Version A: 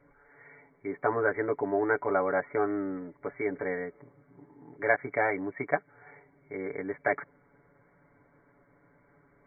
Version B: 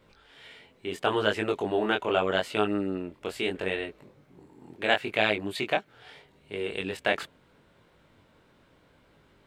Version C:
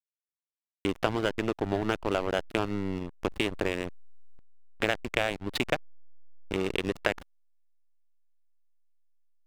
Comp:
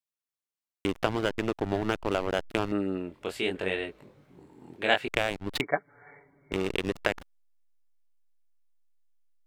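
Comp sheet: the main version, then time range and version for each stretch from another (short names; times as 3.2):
C
2.72–5.08 from B
5.61–6.52 from A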